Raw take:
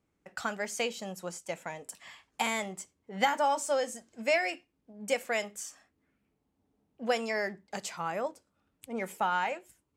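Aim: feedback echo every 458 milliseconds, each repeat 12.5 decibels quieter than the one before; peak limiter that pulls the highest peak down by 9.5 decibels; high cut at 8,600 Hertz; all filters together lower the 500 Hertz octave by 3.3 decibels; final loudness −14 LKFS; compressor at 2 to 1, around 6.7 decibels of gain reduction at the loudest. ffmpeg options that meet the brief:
ffmpeg -i in.wav -af "lowpass=8600,equalizer=frequency=500:width_type=o:gain=-4,acompressor=threshold=-34dB:ratio=2,alimiter=level_in=3.5dB:limit=-24dB:level=0:latency=1,volume=-3.5dB,aecho=1:1:458|916|1374:0.237|0.0569|0.0137,volume=26dB" out.wav

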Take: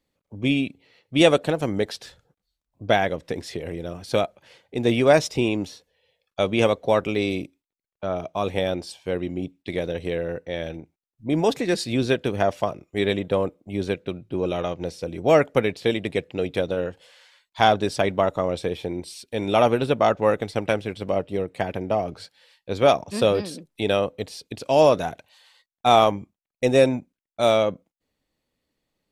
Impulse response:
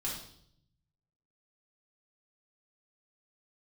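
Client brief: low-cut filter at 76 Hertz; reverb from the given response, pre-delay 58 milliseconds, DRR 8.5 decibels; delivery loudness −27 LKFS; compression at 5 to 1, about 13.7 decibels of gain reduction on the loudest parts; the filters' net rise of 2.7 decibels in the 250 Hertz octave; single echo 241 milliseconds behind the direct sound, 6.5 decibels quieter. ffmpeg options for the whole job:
-filter_complex "[0:a]highpass=76,equalizer=frequency=250:width_type=o:gain=3.5,acompressor=threshold=-26dB:ratio=5,aecho=1:1:241:0.473,asplit=2[link_01][link_02];[1:a]atrim=start_sample=2205,adelay=58[link_03];[link_02][link_03]afir=irnorm=-1:irlink=0,volume=-11dB[link_04];[link_01][link_04]amix=inputs=2:normalize=0,volume=3.5dB"

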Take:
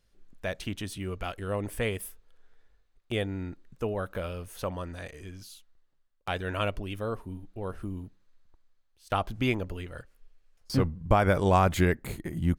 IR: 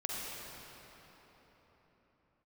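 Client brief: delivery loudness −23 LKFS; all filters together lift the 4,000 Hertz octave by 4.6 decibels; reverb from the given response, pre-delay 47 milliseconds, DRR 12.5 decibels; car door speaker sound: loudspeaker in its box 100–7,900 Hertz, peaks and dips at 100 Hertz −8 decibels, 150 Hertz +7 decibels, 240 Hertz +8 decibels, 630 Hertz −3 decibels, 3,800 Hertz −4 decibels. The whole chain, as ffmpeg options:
-filter_complex "[0:a]equalizer=frequency=4000:width_type=o:gain=8.5,asplit=2[link_01][link_02];[1:a]atrim=start_sample=2205,adelay=47[link_03];[link_02][link_03]afir=irnorm=-1:irlink=0,volume=-16dB[link_04];[link_01][link_04]amix=inputs=2:normalize=0,highpass=100,equalizer=frequency=100:width_type=q:width=4:gain=-8,equalizer=frequency=150:width_type=q:width=4:gain=7,equalizer=frequency=240:width_type=q:width=4:gain=8,equalizer=frequency=630:width_type=q:width=4:gain=-3,equalizer=frequency=3800:width_type=q:width=4:gain=-4,lowpass=frequency=7900:width=0.5412,lowpass=frequency=7900:width=1.3066,volume=7dB"

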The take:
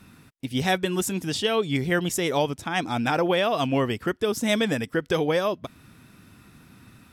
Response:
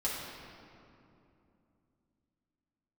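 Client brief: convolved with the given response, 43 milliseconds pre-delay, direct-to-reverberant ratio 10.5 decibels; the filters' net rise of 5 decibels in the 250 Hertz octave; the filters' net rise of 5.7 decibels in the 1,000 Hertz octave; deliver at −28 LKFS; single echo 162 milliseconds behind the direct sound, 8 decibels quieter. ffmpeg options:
-filter_complex "[0:a]equalizer=frequency=250:width_type=o:gain=6,equalizer=frequency=1000:width_type=o:gain=7.5,aecho=1:1:162:0.398,asplit=2[link_01][link_02];[1:a]atrim=start_sample=2205,adelay=43[link_03];[link_02][link_03]afir=irnorm=-1:irlink=0,volume=-16dB[link_04];[link_01][link_04]amix=inputs=2:normalize=0,volume=-7.5dB"

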